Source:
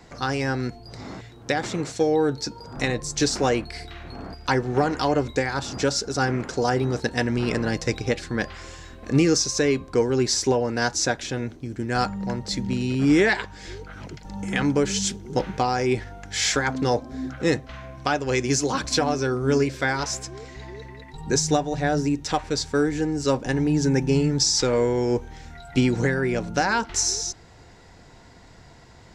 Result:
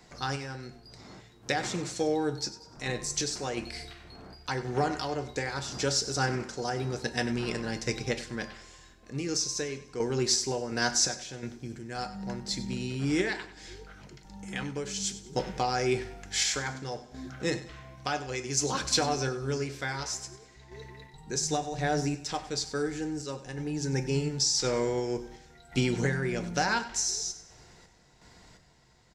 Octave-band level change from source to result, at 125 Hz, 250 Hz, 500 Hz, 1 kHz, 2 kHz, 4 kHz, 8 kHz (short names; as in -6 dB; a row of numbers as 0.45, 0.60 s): -7.5, -10.0, -9.0, -7.0, -7.0, -4.0, -4.0 dB